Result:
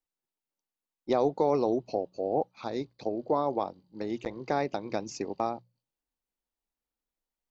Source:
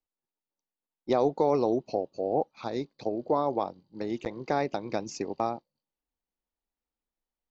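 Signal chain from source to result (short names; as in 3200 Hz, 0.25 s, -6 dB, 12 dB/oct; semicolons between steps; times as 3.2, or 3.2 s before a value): notches 60/120/180 Hz; gain -1 dB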